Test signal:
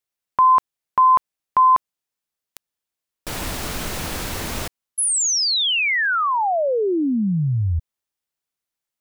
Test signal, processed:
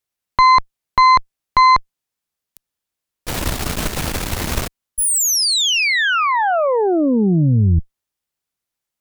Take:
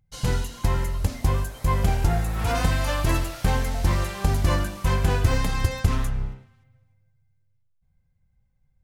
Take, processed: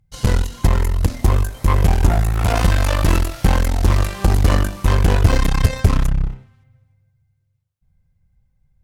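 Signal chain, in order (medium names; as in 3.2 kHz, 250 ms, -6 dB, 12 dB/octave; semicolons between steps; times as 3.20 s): bass shelf 180 Hz +5 dB; Chebyshev shaper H 8 -17 dB, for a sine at -3 dBFS; trim +2.5 dB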